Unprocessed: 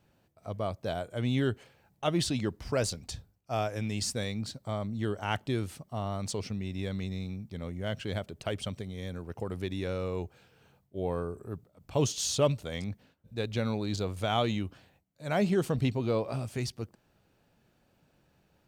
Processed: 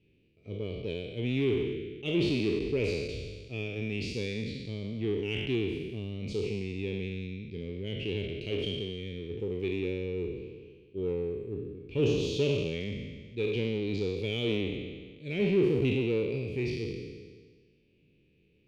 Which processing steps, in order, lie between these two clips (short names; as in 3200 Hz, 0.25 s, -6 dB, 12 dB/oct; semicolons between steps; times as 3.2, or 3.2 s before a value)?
spectral trails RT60 1.58 s; EQ curve 220 Hz 0 dB, 430 Hz +6 dB, 700 Hz -24 dB, 1500 Hz -24 dB, 2400 Hz +7 dB, 8500 Hz -25 dB; in parallel at -10 dB: overloaded stage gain 27 dB; on the sum: gain -4.5 dB